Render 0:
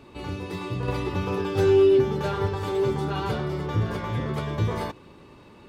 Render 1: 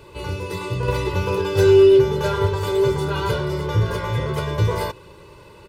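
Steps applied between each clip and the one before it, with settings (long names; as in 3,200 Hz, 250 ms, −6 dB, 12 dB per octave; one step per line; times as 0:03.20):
high-shelf EQ 6,400 Hz +7.5 dB
comb filter 2 ms, depth 80%
level +3 dB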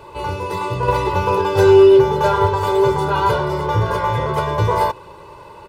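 parametric band 860 Hz +12.5 dB 1.2 octaves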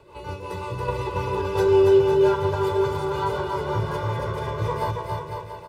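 rotating-speaker cabinet horn 5.5 Hz
on a send: bouncing-ball delay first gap 280 ms, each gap 0.8×, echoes 5
on the sum: level −7.5 dB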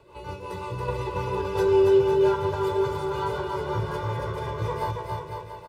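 double-tracking delay 16 ms −12 dB
level −3 dB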